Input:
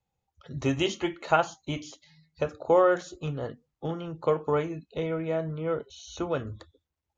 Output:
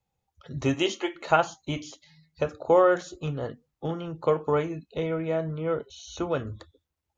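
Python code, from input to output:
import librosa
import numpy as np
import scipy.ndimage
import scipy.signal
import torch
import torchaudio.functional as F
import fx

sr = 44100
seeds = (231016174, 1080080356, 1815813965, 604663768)

y = fx.highpass(x, sr, hz=fx.line((0.73, 160.0), (1.14, 400.0)), slope=24, at=(0.73, 1.14), fade=0.02)
y = y * 10.0 ** (1.5 / 20.0)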